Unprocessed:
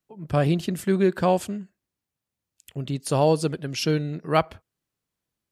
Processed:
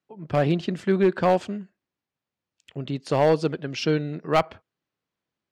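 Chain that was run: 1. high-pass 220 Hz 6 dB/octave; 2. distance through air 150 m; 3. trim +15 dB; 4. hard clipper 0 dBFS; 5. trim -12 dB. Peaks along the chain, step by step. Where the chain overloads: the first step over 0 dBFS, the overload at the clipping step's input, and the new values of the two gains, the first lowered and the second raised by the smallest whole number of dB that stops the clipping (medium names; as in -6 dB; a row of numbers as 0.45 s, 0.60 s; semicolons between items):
-6.0 dBFS, -7.0 dBFS, +8.0 dBFS, 0.0 dBFS, -12.0 dBFS; step 3, 8.0 dB; step 3 +7 dB, step 5 -4 dB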